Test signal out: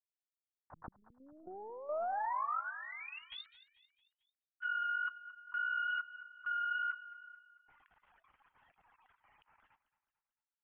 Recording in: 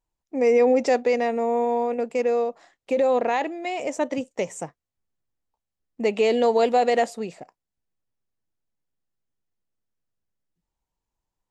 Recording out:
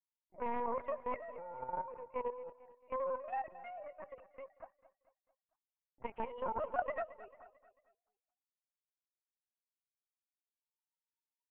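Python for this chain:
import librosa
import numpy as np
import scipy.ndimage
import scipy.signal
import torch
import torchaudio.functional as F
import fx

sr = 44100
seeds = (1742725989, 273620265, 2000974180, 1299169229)

p1 = fx.sine_speech(x, sr)
p2 = fx.tube_stage(p1, sr, drive_db=13.0, bias=0.7)
p3 = fx.ladder_bandpass(p2, sr, hz=1200.0, resonance_pct=30)
p4 = fx.lpc_vocoder(p3, sr, seeds[0], excitation='pitch_kept', order=10)
p5 = fx.level_steps(p4, sr, step_db=11)
p6 = p5 + fx.echo_feedback(p5, sr, ms=222, feedback_pct=47, wet_db=-16.5, dry=0)
y = p6 * 10.0 ** (8.0 / 20.0)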